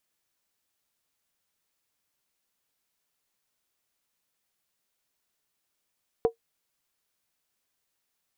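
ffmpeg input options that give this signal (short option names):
-f lavfi -i "aevalsrc='0.2*pow(10,-3*t/0.11)*sin(2*PI*459*t)+0.0596*pow(10,-3*t/0.087)*sin(2*PI*731.6*t)+0.0178*pow(10,-3*t/0.075)*sin(2*PI*980.4*t)+0.00531*pow(10,-3*t/0.073)*sin(2*PI*1053.9*t)+0.00158*pow(10,-3*t/0.068)*sin(2*PI*1217.7*t)':d=0.63:s=44100"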